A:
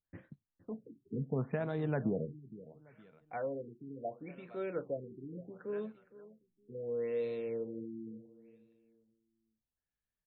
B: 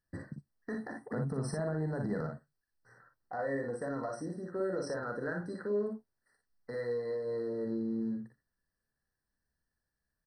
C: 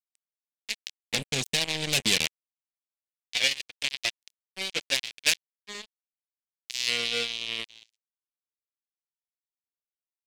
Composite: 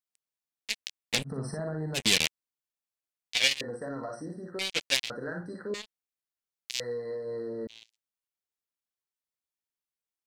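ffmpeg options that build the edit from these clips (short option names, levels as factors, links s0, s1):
-filter_complex "[1:a]asplit=4[s0][s1][s2][s3];[2:a]asplit=5[s4][s5][s6][s7][s8];[s4]atrim=end=1.3[s9];[s0]atrim=start=1.24:end=2[s10];[s5]atrim=start=1.94:end=3.612[s11];[s1]atrim=start=3.608:end=4.592[s12];[s6]atrim=start=4.588:end=5.102[s13];[s2]atrim=start=5.098:end=5.742[s14];[s7]atrim=start=5.738:end=6.802[s15];[s3]atrim=start=6.798:end=7.672[s16];[s8]atrim=start=7.668[s17];[s9][s10]acrossfade=d=0.06:c1=tri:c2=tri[s18];[s18][s11]acrossfade=d=0.06:c1=tri:c2=tri[s19];[s19][s12]acrossfade=d=0.004:c1=hsin:c2=hsin[s20];[s20][s13]acrossfade=d=0.004:c1=hsin:c2=hsin[s21];[s21][s14]acrossfade=d=0.004:c1=hsin:c2=hsin[s22];[s22][s15]acrossfade=d=0.004:c1=hsin:c2=hsin[s23];[s23][s16]acrossfade=d=0.004:c1=hsin:c2=hsin[s24];[s24][s17]acrossfade=d=0.004:c1=hsin:c2=hsin"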